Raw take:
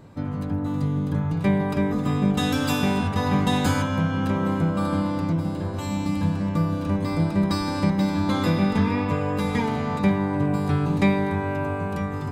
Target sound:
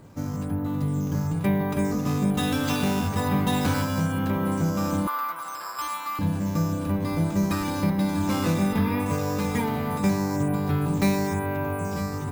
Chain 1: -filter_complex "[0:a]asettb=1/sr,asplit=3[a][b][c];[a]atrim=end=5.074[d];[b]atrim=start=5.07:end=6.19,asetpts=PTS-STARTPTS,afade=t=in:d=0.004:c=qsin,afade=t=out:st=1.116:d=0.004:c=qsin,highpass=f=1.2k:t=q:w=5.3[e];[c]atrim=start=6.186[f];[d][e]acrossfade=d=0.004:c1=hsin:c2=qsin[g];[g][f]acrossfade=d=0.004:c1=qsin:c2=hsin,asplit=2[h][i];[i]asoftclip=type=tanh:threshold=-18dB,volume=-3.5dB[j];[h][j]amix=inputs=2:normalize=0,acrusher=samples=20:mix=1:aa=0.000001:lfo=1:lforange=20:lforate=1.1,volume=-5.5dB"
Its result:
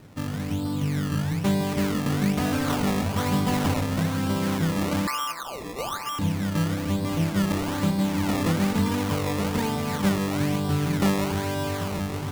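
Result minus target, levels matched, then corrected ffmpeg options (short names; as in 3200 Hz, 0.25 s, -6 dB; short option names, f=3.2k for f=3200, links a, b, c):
decimation with a swept rate: distortion +10 dB
-filter_complex "[0:a]asettb=1/sr,asplit=3[a][b][c];[a]atrim=end=5.074[d];[b]atrim=start=5.07:end=6.19,asetpts=PTS-STARTPTS,afade=t=in:d=0.004:c=qsin,afade=t=out:st=1.116:d=0.004:c=qsin,highpass=f=1.2k:t=q:w=5.3[e];[c]atrim=start=6.186[f];[d][e]acrossfade=d=0.004:c1=hsin:c2=qsin[g];[g][f]acrossfade=d=0.004:c1=qsin:c2=hsin,asplit=2[h][i];[i]asoftclip=type=tanh:threshold=-18dB,volume=-3.5dB[j];[h][j]amix=inputs=2:normalize=0,acrusher=samples=5:mix=1:aa=0.000001:lfo=1:lforange=5:lforate=1.1,volume=-5.5dB"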